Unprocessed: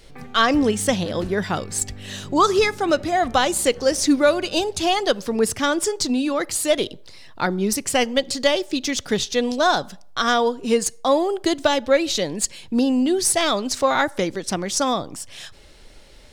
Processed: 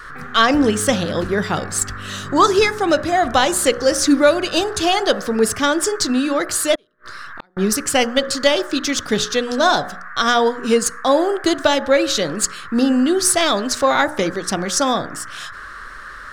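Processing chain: de-hum 60.54 Hz, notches 17; band noise 1100–1800 Hz -39 dBFS; 6.75–7.57 flipped gate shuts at -24 dBFS, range -38 dB; gain +3.5 dB

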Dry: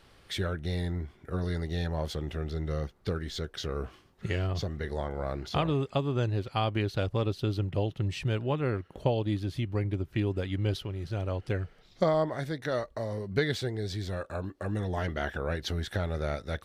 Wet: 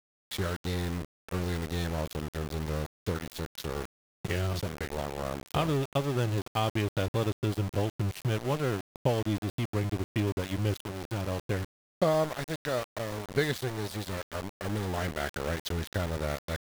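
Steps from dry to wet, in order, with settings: sample gate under -32.5 dBFS

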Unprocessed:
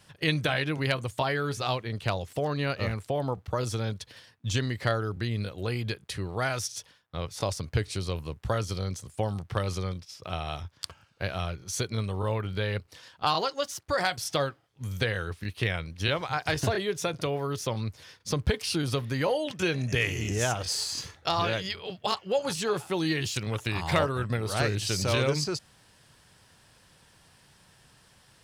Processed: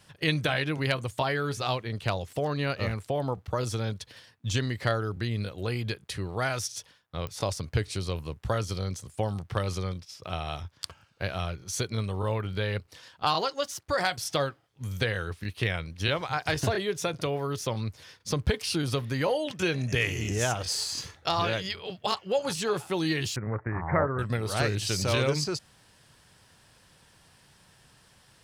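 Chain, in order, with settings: 23.36–24.19 steep low-pass 2000 Hz 72 dB/oct; pops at 7.27, -22 dBFS

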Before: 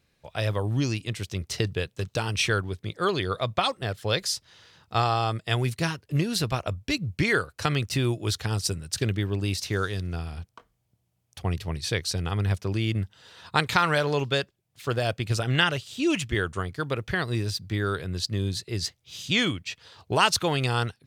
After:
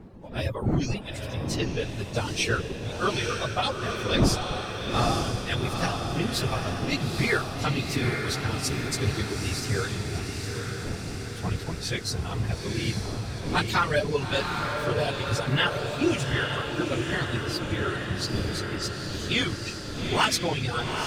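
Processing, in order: phase scrambler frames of 50 ms; wind noise 300 Hz -34 dBFS; reverb removal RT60 1.5 s; wavefolder -10.5 dBFS; diffused feedback echo 0.868 s, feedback 63%, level -4 dB; gain -1.5 dB

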